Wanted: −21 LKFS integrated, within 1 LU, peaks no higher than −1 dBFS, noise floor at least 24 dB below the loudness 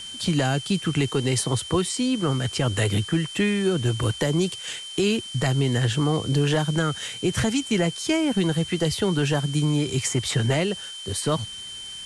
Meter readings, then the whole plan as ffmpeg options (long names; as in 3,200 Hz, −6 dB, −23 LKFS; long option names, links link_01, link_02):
interfering tone 3,100 Hz; level of the tone −35 dBFS; background noise floor −37 dBFS; target noise floor −48 dBFS; integrated loudness −24.0 LKFS; sample peak −12.0 dBFS; target loudness −21.0 LKFS
→ -af "bandreject=frequency=3100:width=30"
-af "afftdn=noise_reduction=11:noise_floor=-37"
-af "volume=3dB"